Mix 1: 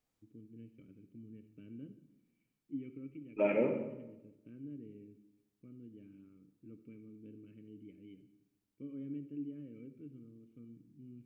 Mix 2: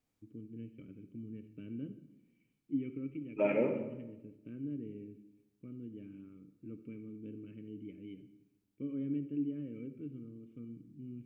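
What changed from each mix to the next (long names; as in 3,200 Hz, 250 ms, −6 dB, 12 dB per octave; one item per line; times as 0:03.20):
first voice +6.5 dB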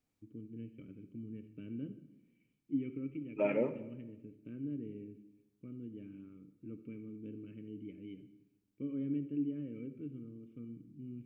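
second voice: send −8.5 dB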